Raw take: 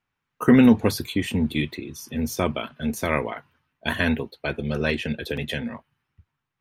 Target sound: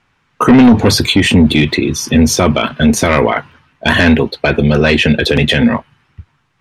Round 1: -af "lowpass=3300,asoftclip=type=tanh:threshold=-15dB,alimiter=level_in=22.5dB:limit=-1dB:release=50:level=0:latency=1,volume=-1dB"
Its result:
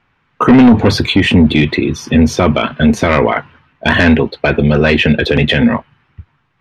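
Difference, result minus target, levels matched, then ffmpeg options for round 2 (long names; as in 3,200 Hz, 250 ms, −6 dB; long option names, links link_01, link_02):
8,000 Hz band −10.0 dB
-af "lowpass=7300,asoftclip=type=tanh:threshold=-15dB,alimiter=level_in=22.5dB:limit=-1dB:release=50:level=0:latency=1,volume=-1dB"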